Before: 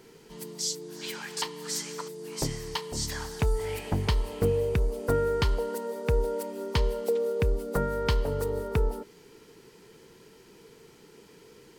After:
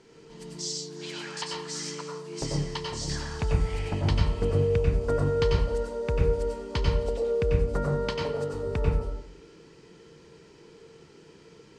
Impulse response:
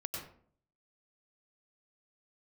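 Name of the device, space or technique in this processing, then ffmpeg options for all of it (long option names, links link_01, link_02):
bathroom: -filter_complex "[0:a]asettb=1/sr,asplit=3[link_01][link_02][link_03];[link_01]atrim=end=7.954[link_04];[link_02]atrim=start=7.95:end=8.54,asetpts=PTS-STARTPTS,afade=type=in:duration=0.004:curve=qsin,afade=type=out:start_time=0.586:duration=0.004:curve=qsin,highpass=200[link_05];[link_03]atrim=start=8.536[link_06];[link_04][link_05]acrossfade=duration=0.004:curve1=hsin:curve2=qsin[link_07];[link_07][link_06]acrossfade=duration=0.004:curve1=qsin:curve2=hsin,lowpass=frequency=7700:width=0.5412,lowpass=frequency=7700:width=1.3066[link_08];[1:a]atrim=start_sample=2205[link_09];[link_08][link_09]afir=irnorm=-1:irlink=0"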